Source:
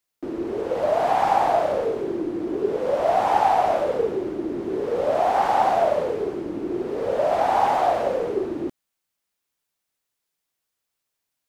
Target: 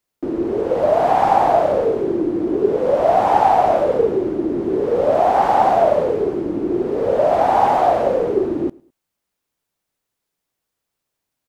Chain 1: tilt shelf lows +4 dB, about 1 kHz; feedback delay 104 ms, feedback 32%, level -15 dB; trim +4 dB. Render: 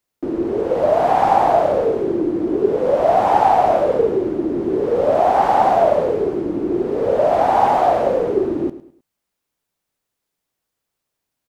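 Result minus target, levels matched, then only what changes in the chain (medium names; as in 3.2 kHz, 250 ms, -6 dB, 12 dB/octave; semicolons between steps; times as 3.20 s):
echo-to-direct +10 dB
change: feedback delay 104 ms, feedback 32%, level -25 dB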